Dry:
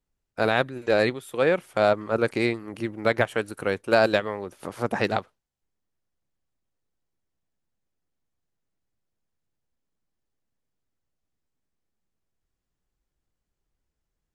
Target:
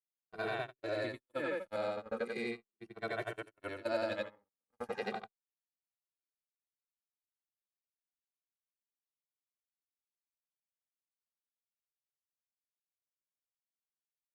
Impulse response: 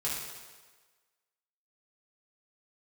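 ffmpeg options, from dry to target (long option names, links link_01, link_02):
-filter_complex "[0:a]afftfilt=real='re':imag='-im':win_size=8192:overlap=0.75,highpass=frequency=110:poles=1,acompressor=threshold=-29dB:ratio=2.5,agate=range=-57dB:threshold=-32dB:ratio=16:detection=peak,asplit=2[link_01][link_02];[link_02]adelay=2.1,afreqshift=-0.38[link_03];[link_01][link_03]amix=inputs=2:normalize=1,volume=-2dB"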